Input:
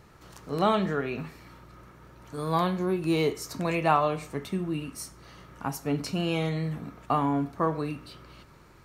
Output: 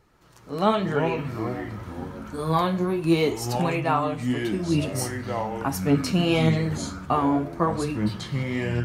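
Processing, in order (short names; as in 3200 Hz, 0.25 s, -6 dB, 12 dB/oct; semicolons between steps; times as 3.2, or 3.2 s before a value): AGC gain up to 16 dB; flange 0.89 Hz, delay 2 ms, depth 9.1 ms, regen +44%; echoes that change speed 0.137 s, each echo -5 st, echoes 3, each echo -6 dB; gain -3.5 dB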